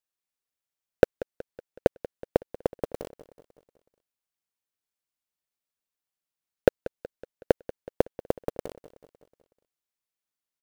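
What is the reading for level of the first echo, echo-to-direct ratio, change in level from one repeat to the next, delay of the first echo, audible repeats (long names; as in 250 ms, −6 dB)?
−17.5 dB, −16.0 dB, −5.0 dB, 186 ms, 4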